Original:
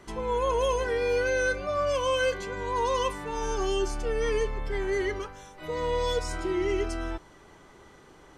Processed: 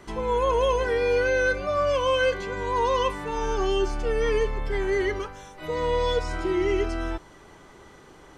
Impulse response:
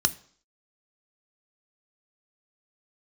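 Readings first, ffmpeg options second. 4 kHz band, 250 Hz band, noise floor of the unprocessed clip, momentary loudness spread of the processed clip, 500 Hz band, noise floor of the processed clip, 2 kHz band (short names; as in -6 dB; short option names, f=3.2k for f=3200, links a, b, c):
+2.5 dB, +3.5 dB, -54 dBFS, 8 LU, +3.5 dB, -50 dBFS, +3.5 dB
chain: -filter_complex "[0:a]acrossover=split=4700[a][b];[b]acompressor=threshold=-55dB:ratio=4:attack=1:release=60[c];[a][c]amix=inputs=2:normalize=0,volume=3.5dB"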